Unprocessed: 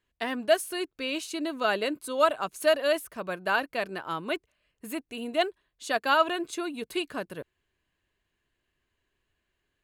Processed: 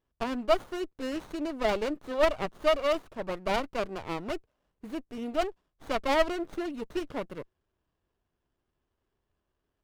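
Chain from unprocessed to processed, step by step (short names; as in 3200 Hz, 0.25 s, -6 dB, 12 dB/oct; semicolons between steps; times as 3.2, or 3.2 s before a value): high shelf 5800 Hz -10 dB; running maximum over 17 samples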